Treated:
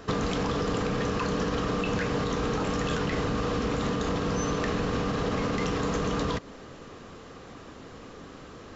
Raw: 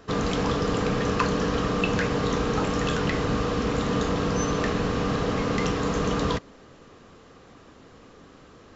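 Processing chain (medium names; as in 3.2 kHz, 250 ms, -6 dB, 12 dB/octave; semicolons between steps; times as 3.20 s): peak limiter -18.5 dBFS, peak gain reduction 9.5 dB; compression 5:1, threshold -30 dBFS, peak gain reduction 6.5 dB; trim +5 dB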